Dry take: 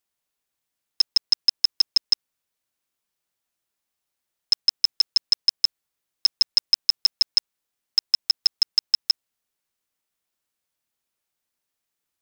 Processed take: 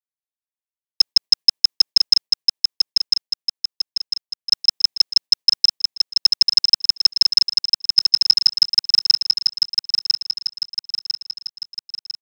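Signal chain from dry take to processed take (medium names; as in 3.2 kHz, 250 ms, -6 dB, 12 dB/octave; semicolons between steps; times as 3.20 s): gate with hold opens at -11 dBFS; high-pass 160 Hz 6 dB/octave; band-stop 1.4 kHz, Q 5; transient shaper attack +6 dB, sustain +1 dB; on a send: feedback delay 1000 ms, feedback 50%, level -4 dB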